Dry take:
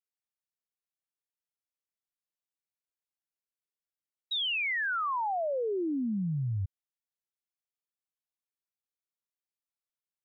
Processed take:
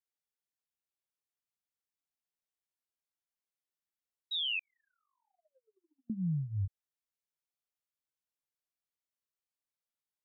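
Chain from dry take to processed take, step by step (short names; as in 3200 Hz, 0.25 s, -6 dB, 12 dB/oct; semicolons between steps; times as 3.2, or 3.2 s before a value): chorus 1.3 Hz, delay 17 ms, depth 3.8 ms; 4.59–6.1 gate -27 dBFS, range -56 dB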